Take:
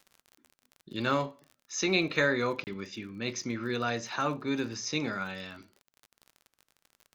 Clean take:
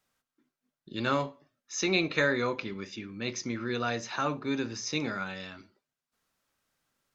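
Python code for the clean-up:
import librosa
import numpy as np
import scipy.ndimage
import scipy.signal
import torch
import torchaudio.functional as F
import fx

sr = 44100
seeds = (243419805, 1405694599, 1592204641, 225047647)

y = fx.fix_declick_ar(x, sr, threshold=6.5)
y = fx.fix_interpolate(y, sr, at_s=(2.64, 5.82), length_ms=29.0)
y = fx.gain(y, sr, db=fx.steps((0.0, 0.0), (5.84, 6.5)))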